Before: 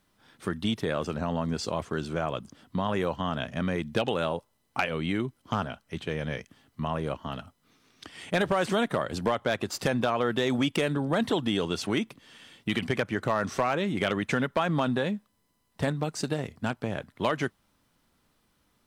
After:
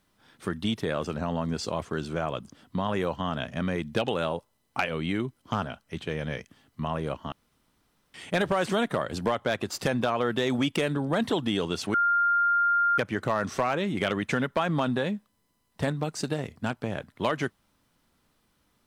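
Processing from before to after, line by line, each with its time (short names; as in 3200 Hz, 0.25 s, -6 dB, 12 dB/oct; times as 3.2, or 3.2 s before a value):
7.32–8.14 room tone
11.94–12.98 bleep 1400 Hz -20 dBFS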